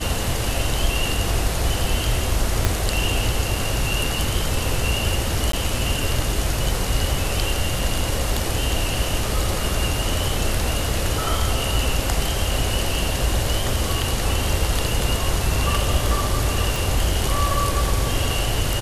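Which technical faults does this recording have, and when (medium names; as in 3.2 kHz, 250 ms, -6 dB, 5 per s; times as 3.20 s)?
2.65 s: pop -4 dBFS
5.52–5.53 s: dropout 13 ms
16.76 s: pop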